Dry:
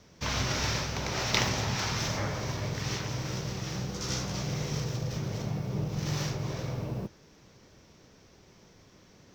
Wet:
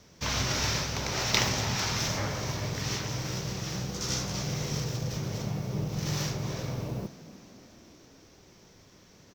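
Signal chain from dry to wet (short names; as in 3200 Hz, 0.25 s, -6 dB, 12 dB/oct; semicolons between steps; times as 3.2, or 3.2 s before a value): high shelf 5800 Hz +6.5 dB; frequency-shifting echo 0.298 s, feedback 64%, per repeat +36 Hz, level -18 dB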